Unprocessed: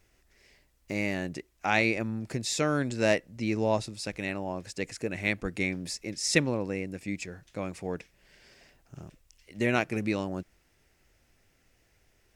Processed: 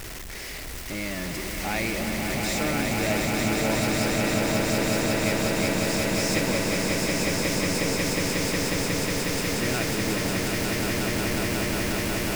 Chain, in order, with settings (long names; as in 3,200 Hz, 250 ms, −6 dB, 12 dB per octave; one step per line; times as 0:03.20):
converter with a step at zero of −23.5 dBFS
echo that builds up and dies away 181 ms, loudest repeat 8, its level −4 dB
level −7.5 dB